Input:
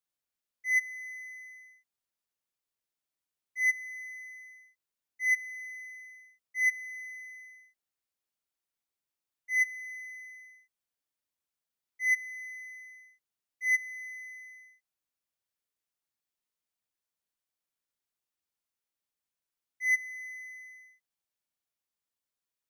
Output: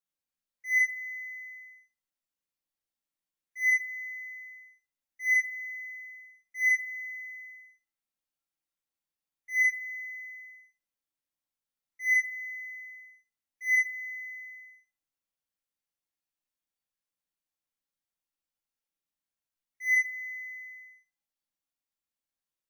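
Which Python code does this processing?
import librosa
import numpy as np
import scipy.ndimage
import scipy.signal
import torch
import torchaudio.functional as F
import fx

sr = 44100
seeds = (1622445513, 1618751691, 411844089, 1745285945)

y = fx.noise_reduce_blind(x, sr, reduce_db=9)
y = fx.room_shoebox(y, sr, seeds[0], volume_m3=550.0, walls='furnished', distance_m=2.2)
y = y * 10.0 ** (3.0 / 20.0)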